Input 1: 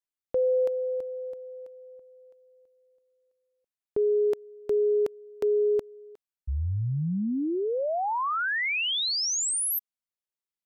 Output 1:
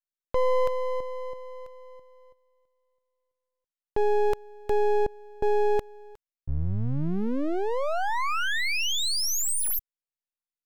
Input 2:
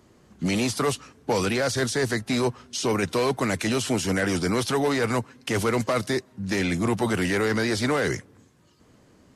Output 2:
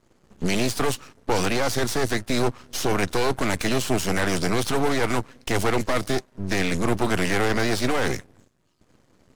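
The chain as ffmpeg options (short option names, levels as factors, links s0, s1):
-af "agate=range=0.316:threshold=0.002:ratio=3:release=37:detection=peak,aeval=exprs='max(val(0),0)':c=same,volume=1.78"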